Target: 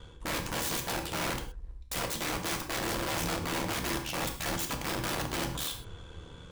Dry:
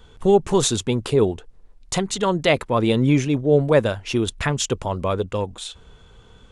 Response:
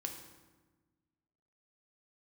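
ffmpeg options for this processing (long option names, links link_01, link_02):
-filter_complex "[0:a]areverse,acompressor=threshold=-27dB:ratio=6,areverse,aeval=exprs='val(0)*sin(2*PI*38*n/s)':channel_layout=same,aeval=exprs='(mod(35.5*val(0)+1,2)-1)/35.5':channel_layout=same,atempo=1[link_01];[1:a]atrim=start_sample=2205,afade=type=out:start_time=0.18:duration=0.01,atrim=end_sample=8379[link_02];[link_01][link_02]afir=irnorm=-1:irlink=0,volume=6dB"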